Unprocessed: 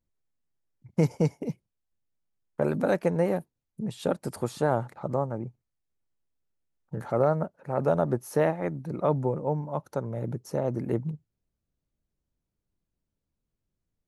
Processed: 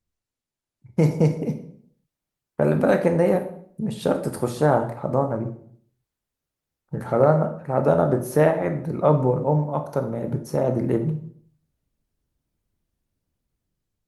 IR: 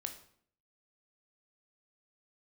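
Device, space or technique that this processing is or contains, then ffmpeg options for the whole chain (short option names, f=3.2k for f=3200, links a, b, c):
speakerphone in a meeting room: -filter_complex "[1:a]atrim=start_sample=2205[a];[0:a][a]afir=irnorm=-1:irlink=0,dynaudnorm=f=360:g=5:m=6dB,volume=2.5dB" -ar 48000 -c:a libopus -b:a 32k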